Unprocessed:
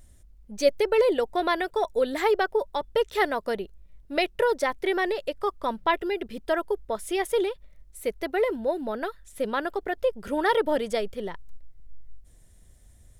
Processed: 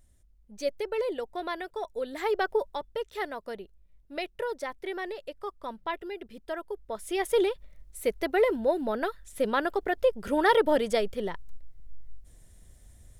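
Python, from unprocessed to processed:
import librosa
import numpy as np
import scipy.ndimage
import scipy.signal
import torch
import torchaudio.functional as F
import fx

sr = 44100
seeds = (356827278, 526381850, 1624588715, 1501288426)

y = fx.gain(x, sr, db=fx.line((2.11, -9.0), (2.53, -1.0), (2.98, -9.5), (6.68, -9.5), (7.42, 1.0)))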